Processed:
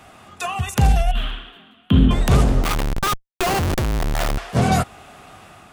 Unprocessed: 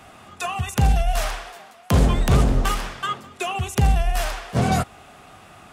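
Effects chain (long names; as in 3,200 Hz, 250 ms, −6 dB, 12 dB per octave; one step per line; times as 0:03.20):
0:01.11–0:02.11: drawn EQ curve 140 Hz 0 dB, 260 Hz +8 dB, 570 Hz −14 dB, 840 Hz −14 dB, 1,400 Hz −5 dB, 2,200 Hz −10 dB, 3,200 Hz +6 dB, 5,200 Hz −29 dB, 14,000 Hz −20 dB
automatic gain control gain up to 3 dB
0:02.63–0:04.38: comparator with hysteresis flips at −24.5 dBFS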